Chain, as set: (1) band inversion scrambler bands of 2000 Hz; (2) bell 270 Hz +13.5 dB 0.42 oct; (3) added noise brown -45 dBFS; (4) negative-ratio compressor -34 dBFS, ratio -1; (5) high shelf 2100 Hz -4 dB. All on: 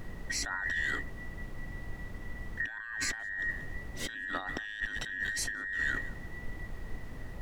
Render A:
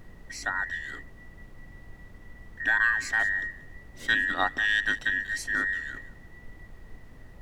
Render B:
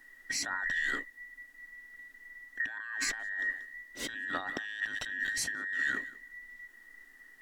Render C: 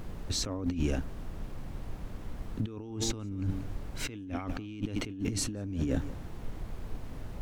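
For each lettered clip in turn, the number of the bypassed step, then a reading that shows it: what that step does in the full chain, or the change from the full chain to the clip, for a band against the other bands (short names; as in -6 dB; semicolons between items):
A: 4, crest factor change +3.5 dB; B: 3, 125 Hz band -16.5 dB; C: 1, 2 kHz band -21.0 dB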